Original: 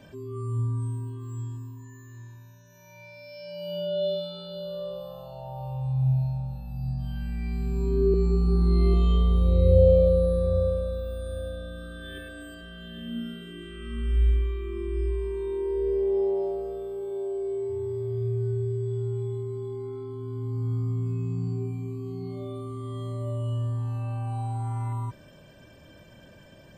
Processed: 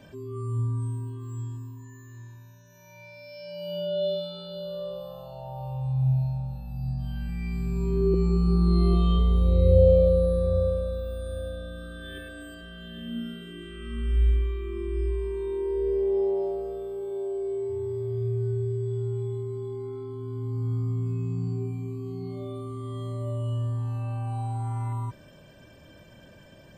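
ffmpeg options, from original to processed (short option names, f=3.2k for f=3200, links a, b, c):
-filter_complex "[0:a]asettb=1/sr,asplit=3[a][b][c];[a]atrim=end=7.284[d];[b]atrim=start=7.28:end=9.19,asetpts=PTS-STARTPTS,afade=t=in:d=0.004:c=qsin,afade=t=out:st=1.906:d=0.004:c=qsin,aecho=1:1:6:0.59,atrim=end_sample=84231[e];[c]atrim=start=9.186[f];[d][e]acrossfade=d=0.004:c1=hsin:c2=qsin[g];[g][f]acrossfade=d=0.004:c1=qsin:c2=hsin"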